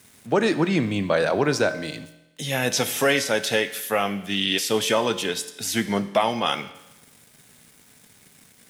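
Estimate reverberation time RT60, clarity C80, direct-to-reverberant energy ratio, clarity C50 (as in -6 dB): 0.95 s, 15.5 dB, 11.0 dB, 13.5 dB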